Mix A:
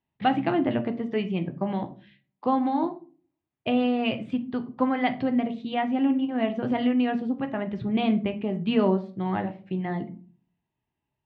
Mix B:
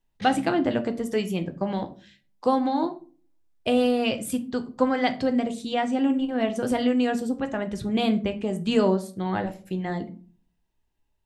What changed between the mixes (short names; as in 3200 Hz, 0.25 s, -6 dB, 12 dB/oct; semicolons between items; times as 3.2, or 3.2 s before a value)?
background: send on; master: remove speaker cabinet 110–3000 Hz, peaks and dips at 130 Hz +8 dB, 500 Hz -6 dB, 1500 Hz -5 dB